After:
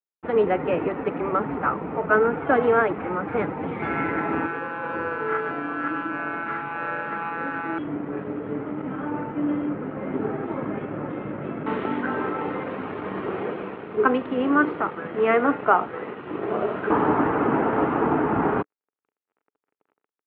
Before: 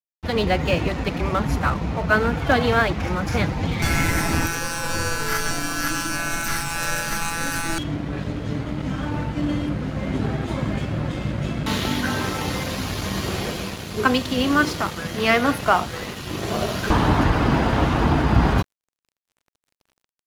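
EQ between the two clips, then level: air absorption 490 m; speaker cabinet 230–2700 Hz, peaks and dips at 300 Hz +4 dB, 430 Hz +9 dB, 860 Hz +4 dB, 1300 Hz +6 dB; -2.0 dB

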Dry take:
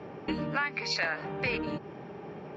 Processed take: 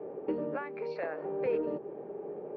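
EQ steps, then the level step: band-pass 460 Hz, Q 2.9; air absorption 160 m; +7.5 dB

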